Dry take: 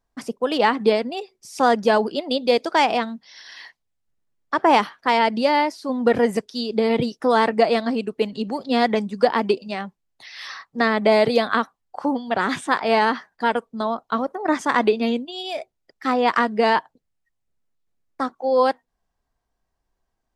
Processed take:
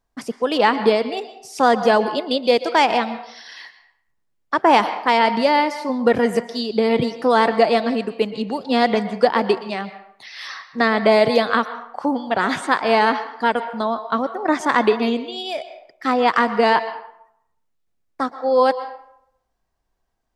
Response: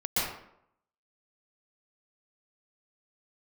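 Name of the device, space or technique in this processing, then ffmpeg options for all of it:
filtered reverb send: -filter_complex "[0:a]asplit=2[link_01][link_02];[link_02]highpass=420,lowpass=6200[link_03];[1:a]atrim=start_sample=2205[link_04];[link_03][link_04]afir=irnorm=-1:irlink=0,volume=-20.5dB[link_05];[link_01][link_05]amix=inputs=2:normalize=0,volume=1.5dB"

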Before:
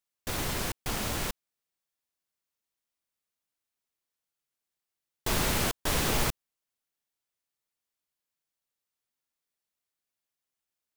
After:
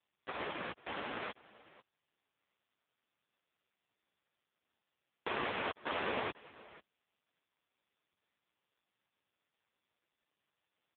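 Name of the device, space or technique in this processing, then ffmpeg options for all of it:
satellite phone: -af "highpass=320,lowpass=3200,aecho=1:1:494:0.0944,volume=1dB" -ar 8000 -c:a libopencore_amrnb -b:a 4750

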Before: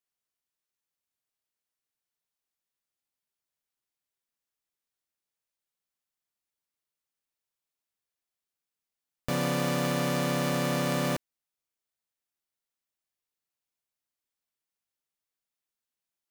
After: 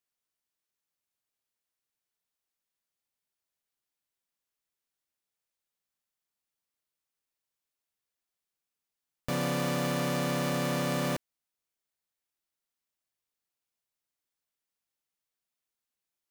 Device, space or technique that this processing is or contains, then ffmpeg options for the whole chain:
parallel distortion: -filter_complex "[0:a]asplit=2[link_01][link_02];[link_02]asoftclip=type=hard:threshold=-34dB,volume=-5.5dB[link_03];[link_01][link_03]amix=inputs=2:normalize=0,volume=-3.5dB"

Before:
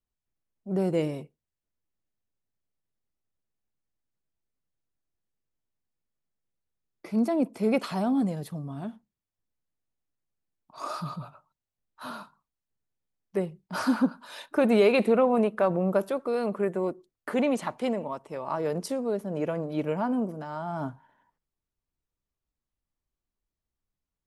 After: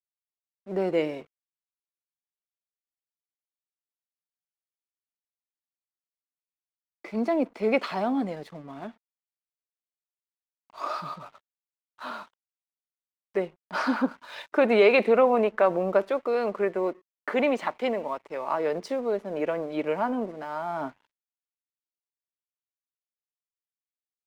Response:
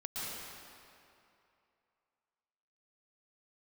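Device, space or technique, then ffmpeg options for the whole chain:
pocket radio on a weak battery: -af "highpass=330,lowpass=4200,aeval=exprs='sgn(val(0))*max(abs(val(0))-0.00126,0)':channel_layout=same,equalizer=frequency=2100:width_type=o:width=0.51:gain=4.5,volume=3.5dB"

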